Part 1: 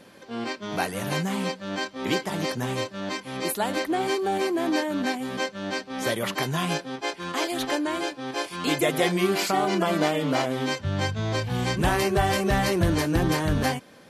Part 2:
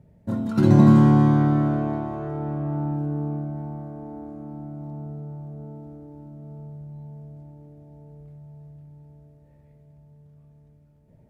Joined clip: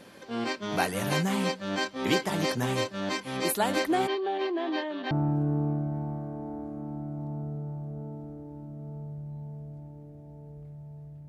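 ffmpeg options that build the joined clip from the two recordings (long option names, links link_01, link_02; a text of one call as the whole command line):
ffmpeg -i cue0.wav -i cue1.wav -filter_complex "[0:a]asplit=3[link_01][link_02][link_03];[link_01]afade=type=out:start_time=4.06:duration=0.02[link_04];[link_02]highpass=frequency=350:width=0.5412,highpass=frequency=350:width=1.3066,equalizer=frequency=510:width_type=q:width=4:gain=-10,equalizer=frequency=860:width_type=q:width=4:gain=-5,equalizer=frequency=1400:width_type=q:width=4:gain=-10,equalizer=frequency=2300:width_type=q:width=4:gain=-8,lowpass=frequency=3500:width=0.5412,lowpass=frequency=3500:width=1.3066,afade=type=in:start_time=4.06:duration=0.02,afade=type=out:start_time=5.11:duration=0.02[link_05];[link_03]afade=type=in:start_time=5.11:duration=0.02[link_06];[link_04][link_05][link_06]amix=inputs=3:normalize=0,apad=whole_dur=11.28,atrim=end=11.28,atrim=end=5.112[link_07];[1:a]atrim=start=2.738:end=8.91[link_08];[link_07][link_08]acrossfade=duration=0.004:curve1=hsin:curve2=hsin" out.wav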